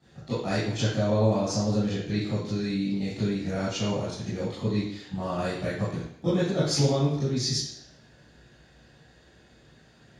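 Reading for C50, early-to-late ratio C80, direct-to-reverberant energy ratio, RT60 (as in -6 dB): 0.0 dB, 4.5 dB, -11.5 dB, 0.75 s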